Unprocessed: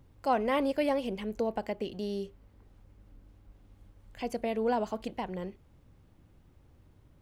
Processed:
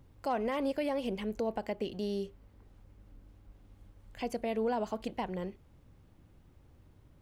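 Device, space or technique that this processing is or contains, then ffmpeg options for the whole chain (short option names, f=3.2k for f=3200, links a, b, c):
clipper into limiter: -af "asoftclip=type=hard:threshold=-17.5dB,alimiter=limit=-23.5dB:level=0:latency=1:release=143"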